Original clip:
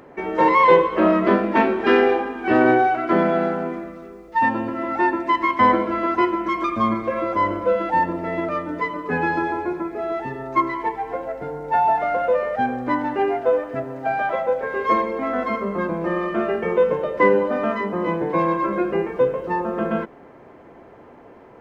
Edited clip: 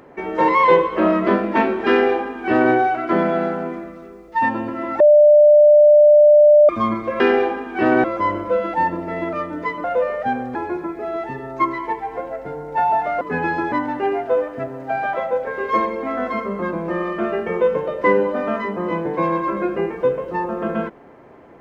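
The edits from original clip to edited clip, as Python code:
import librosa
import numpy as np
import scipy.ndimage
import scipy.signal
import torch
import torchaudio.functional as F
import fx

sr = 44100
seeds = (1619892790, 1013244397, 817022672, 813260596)

y = fx.edit(x, sr, fx.duplicate(start_s=1.89, length_s=0.84, to_s=7.2),
    fx.bleep(start_s=5.0, length_s=1.69, hz=595.0, db=-6.5),
    fx.swap(start_s=9.0, length_s=0.51, other_s=12.17, other_length_s=0.71), tone=tone)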